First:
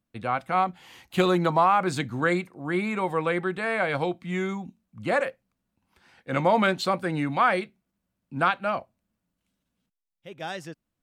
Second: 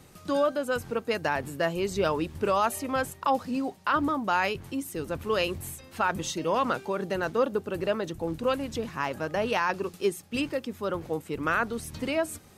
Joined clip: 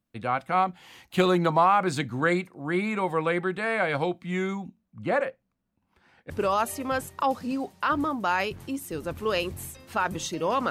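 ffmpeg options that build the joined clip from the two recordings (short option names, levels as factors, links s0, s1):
-filter_complex "[0:a]asettb=1/sr,asplit=3[s0][s1][s2];[s0]atrim=end=4.684[s3];[s1]atrim=start=4.68:end=6.3,asetpts=PTS-STARTPTS,afade=t=in:d=0.004:c=qsin,afade=t=out:st=1.616:d=0.004:c=qsin,highshelf=f=3000:g=-10[s4];[s2]atrim=start=6.296[s5];[s3][s4]acrossfade=d=0.004:c1=hsin:c2=qsin[s6];[s6][s5]acrossfade=d=0.004:c1=qsin:c2=hsin,apad=whole_dur=10.7,atrim=end=10.7,atrim=end=6.302[s7];[1:a]atrim=start=2.338:end=6.74[s8];[s7][s8]acrossfade=d=0.004:c1=hsin:c2=hsin"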